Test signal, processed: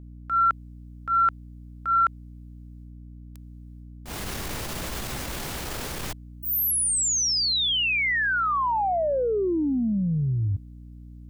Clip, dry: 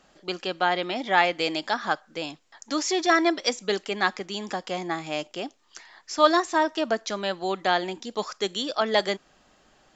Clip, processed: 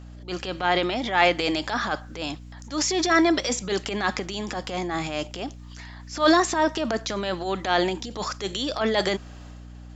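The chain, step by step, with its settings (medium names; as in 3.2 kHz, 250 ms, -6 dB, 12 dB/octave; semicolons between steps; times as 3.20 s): transient shaper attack -10 dB, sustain +7 dB; hum 60 Hz, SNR 16 dB; trim +2.5 dB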